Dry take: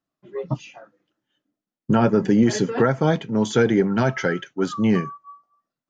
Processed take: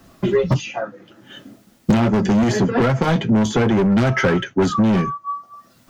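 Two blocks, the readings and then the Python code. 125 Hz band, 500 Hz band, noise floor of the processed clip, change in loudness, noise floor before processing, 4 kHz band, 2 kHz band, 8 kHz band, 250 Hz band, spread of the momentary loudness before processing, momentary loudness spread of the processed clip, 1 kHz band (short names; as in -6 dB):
+5.5 dB, +2.0 dB, -54 dBFS, +3.0 dB, under -85 dBFS, +5.0 dB, +4.0 dB, n/a, +3.5 dB, 12 LU, 12 LU, +4.5 dB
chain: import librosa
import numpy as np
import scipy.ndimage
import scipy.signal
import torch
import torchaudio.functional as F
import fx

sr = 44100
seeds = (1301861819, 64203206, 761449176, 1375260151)

p1 = fx.low_shelf(x, sr, hz=140.0, db=11.0)
p2 = fx.rider(p1, sr, range_db=10, speed_s=0.5)
p3 = p1 + (p2 * librosa.db_to_amplitude(2.5))
p4 = np.clip(p3, -10.0 ** (-7.0 / 20.0), 10.0 ** (-7.0 / 20.0))
p5 = fx.notch_comb(p4, sr, f0_hz=150.0)
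p6 = 10.0 ** (-12.0 / 20.0) * np.tanh(p5 / 10.0 ** (-12.0 / 20.0))
y = fx.band_squash(p6, sr, depth_pct=100)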